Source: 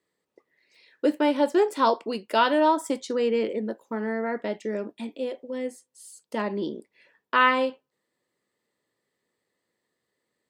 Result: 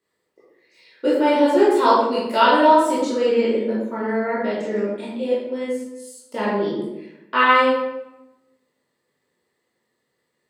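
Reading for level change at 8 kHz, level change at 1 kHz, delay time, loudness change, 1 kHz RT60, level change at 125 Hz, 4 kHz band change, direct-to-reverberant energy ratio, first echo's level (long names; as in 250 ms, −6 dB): +4.5 dB, +7.0 dB, no echo audible, +6.5 dB, 0.90 s, can't be measured, +5.5 dB, −8.0 dB, no echo audible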